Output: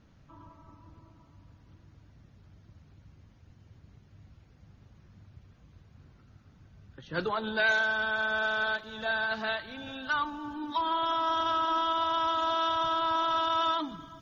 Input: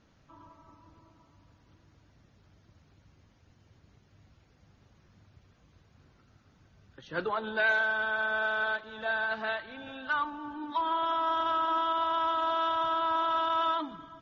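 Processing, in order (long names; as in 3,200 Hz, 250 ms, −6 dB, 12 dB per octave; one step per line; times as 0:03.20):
bass and treble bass +7 dB, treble −2 dB, from 0:07.13 treble +14 dB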